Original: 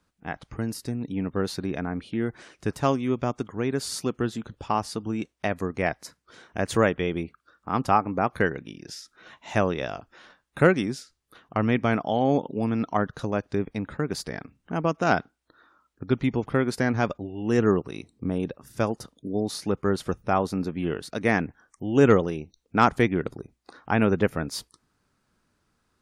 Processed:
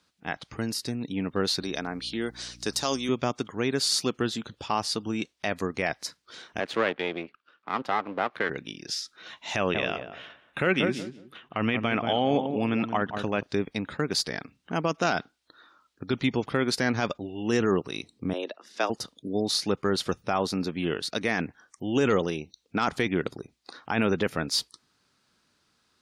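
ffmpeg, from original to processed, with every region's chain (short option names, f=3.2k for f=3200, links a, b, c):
-filter_complex "[0:a]asettb=1/sr,asplit=3[a][b][c];[a]atrim=end=1.624[d];[b]atrim=start=1.62:end=3.09,asetpts=PTS-STARTPTS,afade=t=in:d=0.004:c=qsin,afade=t=out:st=1.466:d=0.004:c=qsin,highpass=f=280:p=1,highshelf=f=3.4k:t=q:w=1.5:g=7.5,aeval=exprs='val(0)+0.00562*(sin(2*PI*60*n/s)+sin(2*PI*2*60*n/s)/2+sin(2*PI*3*60*n/s)/3+sin(2*PI*4*60*n/s)/4+sin(2*PI*5*60*n/s)/5)':c=same[e];[c]atrim=start=3.086[f];[d][e]acrossfade=d=0.004:c1=hsin:c2=qsin[g];[g][f]acrossfade=d=0.004:c1=qsin:c2=hsin,asettb=1/sr,asplit=3[h][i][j];[h]atrim=end=6.604[k];[i]atrim=start=6.6:end=8.5,asetpts=PTS-STARTPTS,afade=t=in:d=0.004:c=qsin,afade=t=out:st=1.896:d=0.004:c=qsin,aeval=exprs='if(lt(val(0),0),0.251*val(0),val(0))':c=same,acrossover=split=210 3300:gain=0.158 1 0.141[l][m][n];[l][m][n]amix=inputs=3:normalize=0[o];[j]atrim=start=8.496[p];[k][o]acrossfade=d=0.004:c1=hsin:c2=qsin[q];[q][p]acrossfade=d=0.004:c1=qsin:c2=hsin,asettb=1/sr,asplit=3[r][s][t];[r]atrim=end=9.564[u];[s]atrim=start=9.56:end=13.43,asetpts=PTS-STARTPTS,afade=t=in:d=0.004:c=qsin,afade=t=out:st=3.866:d=0.004:c=qsin,highshelf=f=3.6k:t=q:w=3:g=-7,asplit=2[v][w];[w]adelay=182,lowpass=f=920:p=1,volume=-8.5dB,asplit=2[x][y];[y]adelay=182,lowpass=f=920:p=1,volume=0.22,asplit=2[z][aa];[aa]adelay=182,lowpass=f=920:p=1,volume=0.22[ab];[v][x][z][ab]amix=inputs=4:normalize=0,atrim=end_sample=170667[ac];[t]atrim=start=13.426[ad];[u][ac]acrossfade=d=0.004:c1=hsin:c2=qsin[ae];[ae][ad]acrossfade=d=0.004:c1=qsin:c2=hsin,asettb=1/sr,asplit=3[af][ag][ah];[af]atrim=end=18.334[ai];[ag]atrim=start=18.33:end=18.9,asetpts=PTS-STARTPTS,afade=t=in:d=0.004:c=qsin,afade=t=out:st=0.566:d=0.004:c=qsin,afreqshift=90,highpass=470,lowpass=5.1k[aj];[ah]atrim=start=18.896[ak];[ai][aj]acrossfade=d=0.004:c1=hsin:c2=qsin[al];[al][ak]acrossfade=d=0.004:c1=qsin:c2=hsin,highpass=f=140:p=1,equalizer=f=4.1k:t=o:w=1.6:g=10.5,alimiter=limit=-13.5dB:level=0:latency=1:release=13"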